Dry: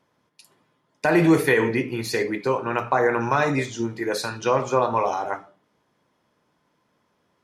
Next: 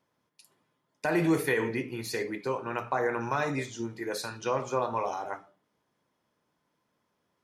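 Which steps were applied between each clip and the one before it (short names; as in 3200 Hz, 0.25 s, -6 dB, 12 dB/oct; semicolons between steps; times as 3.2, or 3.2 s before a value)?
high shelf 7500 Hz +5.5 dB; gain -8.5 dB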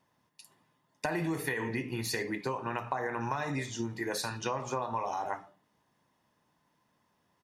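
comb 1.1 ms, depth 35%; compressor 12:1, threshold -32 dBFS, peak gain reduction 11 dB; gain +3 dB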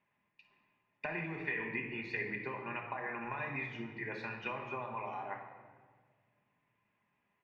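ladder low-pass 2600 Hz, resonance 70%; shoebox room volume 2100 m³, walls mixed, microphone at 1.3 m; gain +1.5 dB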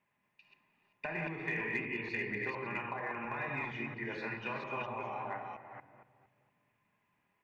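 reverse delay 0.232 s, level -2.5 dB; in parallel at -10 dB: overloaded stage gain 30 dB; on the sum: gain -2.5 dB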